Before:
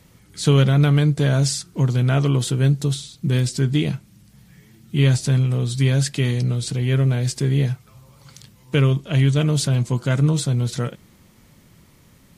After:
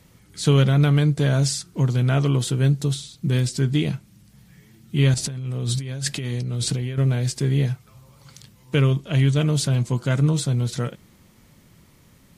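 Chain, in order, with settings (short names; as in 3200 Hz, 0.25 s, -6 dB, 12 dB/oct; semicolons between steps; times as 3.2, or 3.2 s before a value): 5.14–6.98 negative-ratio compressor -25 dBFS, ratio -1; gain -1.5 dB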